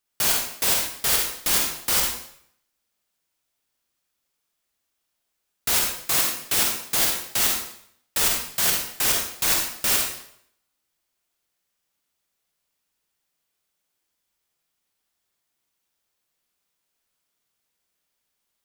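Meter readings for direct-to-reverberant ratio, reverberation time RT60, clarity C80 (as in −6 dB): 0.0 dB, 0.65 s, 5.0 dB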